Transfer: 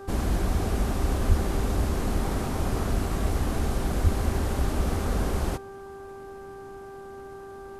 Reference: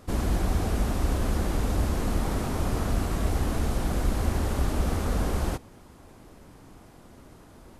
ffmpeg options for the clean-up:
-filter_complex "[0:a]bandreject=f=392.8:t=h:w=4,bandreject=f=785.6:t=h:w=4,bandreject=f=1.1784k:t=h:w=4,bandreject=f=1.5712k:t=h:w=4,asplit=3[a][b][c];[a]afade=t=out:st=1.28:d=0.02[d];[b]highpass=f=140:w=0.5412,highpass=f=140:w=1.3066,afade=t=in:st=1.28:d=0.02,afade=t=out:st=1.4:d=0.02[e];[c]afade=t=in:st=1.4:d=0.02[f];[d][e][f]amix=inputs=3:normalize=0,asplit=3[g][h][i];[g]afade=t=out:st=4.03:d=0.02[j];[h]highpass=f=140:w=0.5412,highpass=f=140:w=1.3066,afade=t=in:st=4.03:d=0.02,afade=t=out:st=4.15:d=0.02[k];[i]afade=t=in:st=4.15:d=0.02[l];[j][k][l]amix=inputs=3:normalize=0"

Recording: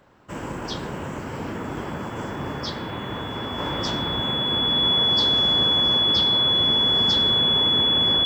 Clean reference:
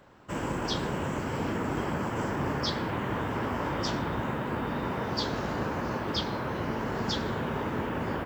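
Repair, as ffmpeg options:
-af "bandreject=f=3.4k:w=30,asetnsamples=n=441:p=0,asendcmd='3.58 volume volume -3dB',volume=0dB"

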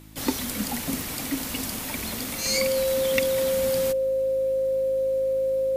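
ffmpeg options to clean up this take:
-af "adeclick=t=4,bandreject=f=53.1:t=h:w=4,bandreject=f=106.2:t=h:w=4,bandreject=f=159.3:t=h:w=4,bandreject=f=212.4:t=h:w=4,bandreject=f=265.5:t=h:w=4,bandreject=f=318.6:t=h:w=4,bandreject=f=530:w=30"

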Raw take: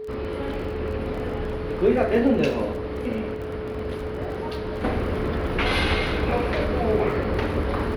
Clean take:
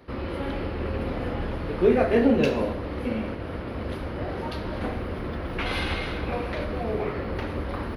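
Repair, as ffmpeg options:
-af "adeclick=t=4,bandreject=f=430:w=30,asetnsamples=n=441:p=0,asendcmd='4.84 volume volume -5.5dB',volume=0dB"

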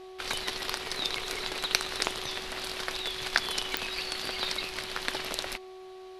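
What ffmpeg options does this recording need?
-af "adeclick=t=4,bandreject=f=374.2:t=h:w=4,bandreject=f=748.4:t=h:w=4,bandreject=f=1.1226k:t=h:w=4,bandreject=f=670:w=30"

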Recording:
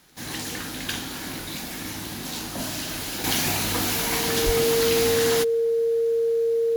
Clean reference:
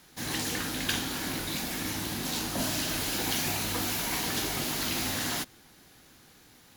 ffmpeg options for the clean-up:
-filter_complex "[0:a]adeclick=t=4,bandreject=f=460:w=30,asplit=3[a][b][c];[a]afade=t=out:st=4.45:d=0.02[d];[b]highpass=f=140:w=0.5412,highpass=f=140:w=1.3066,afade=t=in:st=4.45:d=0.02,afade=t=out:st=4.57:d=0.02[e];[c]afade=t=in:st=4.57:d=0.02[f];[d][e][f]amix=inputs=3:normalize=0,asetnsamples=n=441:p=0,asendcmd='3.24 volume volume -6dB',volume=0dB"

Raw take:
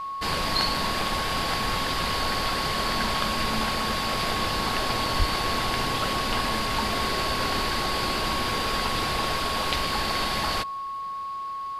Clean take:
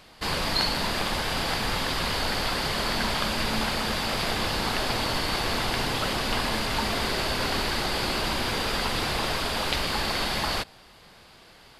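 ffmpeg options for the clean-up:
-filter_complex "[0:a]bandreject=f=1.1k:w=30,asplit=3[a][b][c];[a]afade=t=out:st=5.18:d=0.02[d];[b]highpass=f=140:w=0.5412,highpass=f=140:w=1.3066,afade=t=in:st=5.18:d=0.02,afade=t=out:st=5.3:d=0.02[e];[c]afade=t=in:st=5.3:d=0.02[f];[d][e][f]amix=inputs=3:normalize=0"

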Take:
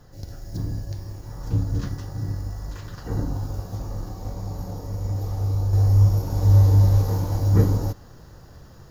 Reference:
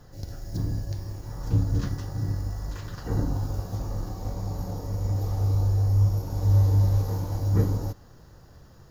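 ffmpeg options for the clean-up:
-af "asetnsamples=n=441:p=0,asendcmd='5.73 volume volume -5dB',volume=0dB"

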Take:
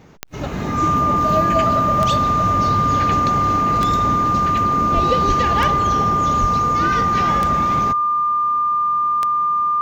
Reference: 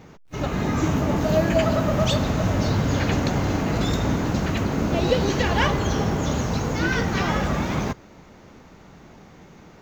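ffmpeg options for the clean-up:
-filter_complex "[0:a]adeclick=t=4,bandreject=f=1.2k:w=30,asplit=3[a][b][c];[a]afade=t=out:st=4.94:d=0.02[d];[b]highpass=f=140:w=0.5412,highpass=f=140:w=1.3066,afade=t=in:st=4.94:d=0.02,afade=t=out:st=5.06:d=0.02[e];[c]afade=t=in:st=5.06:d=0.02[f];[d][e][f]amix=inputs=3:normalize=0,asplit=3[g][h][i];[g]afade=t=out:st=5.27:d=0.02[j];[h]highpass=f=140:w=0.5412,highpass=f=140:w=1.3066,afade=t=in:st=5.27:d=0.02,afade=t=out:st=5.39:d=0.02[k];[i]afade=t=in:st=5.39:d=0.02[l];[j][k][l]amix=inputs=3:normalize=0,asplit=3[m][n][o];[m]afade=t=out:st=6.4:d=0.02[p];[n]highpass=f=140:w=0.5412,highpass=f=140:w=1.3066,afade=t=in:st=6.4:d=0.02,afade=t=out:st=6.52:d=0.02[q];[o]afade=t=in:st=6.52:d=0.02[r];[p][q][r]amix=inputs=3:normalize=0"

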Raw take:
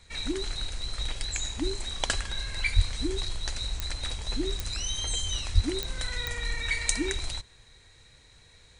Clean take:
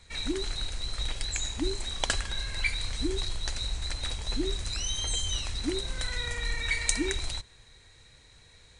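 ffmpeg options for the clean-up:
-filter_complex "[0:a]adeclick=t=4,asplit=3[a][b][c];[a]afade=t=out:st=2.75:d=0.02[d];[b]highpass=f=140:w=0.5412,highpass=f=140:w=1.3066,afade=t=in:st=2.75:d=0.02,afade=t=out:st=2.87:d=0.02[e];[c]afade=t=in:st=2.87:d=0.02[f];[d][e][f]amix=inputs=3:normalize=0,asplit=3[g][h][i];[g]afade=t=out:st=5.54:d=0.02[j];[h]highpass=f=140:w=0.5412,highpass=f=140:w=1.3066,afade=t=in:st=5.54:d=0.02,afade=t=out:st=5.66:d=0.02[k];[i]afade=t=in:st=5.66:d=0.02[l];[j][k][l]amix=inputs=3:normalize=0"

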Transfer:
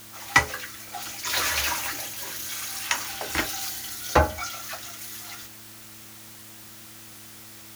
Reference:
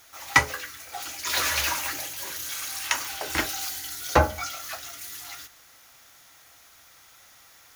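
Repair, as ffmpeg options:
-af "bandreject=f=109.1:t=h:w=4,bandreject=f=218.2:t=h:w=4,bandreject=f=327.3:t=h:w=4,afftdn=nr=9:nf=-45"

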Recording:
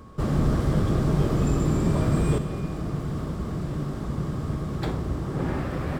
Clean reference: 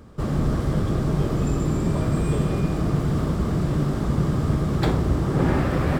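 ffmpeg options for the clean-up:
-af "bandreject=f=1.1k:w=30,asetnsamples=n=441:p=0,asendcmd='2.38 volume volume 7dB',volume=0dB"

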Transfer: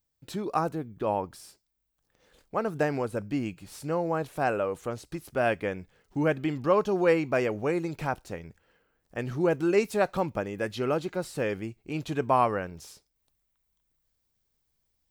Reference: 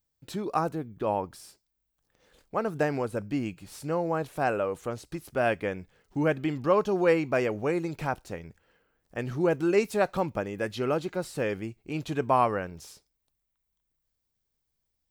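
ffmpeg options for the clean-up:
-af "asetnsamples=n=441:p=0,asendcmd='13.16 volume volume -4dB',volume=0dB"

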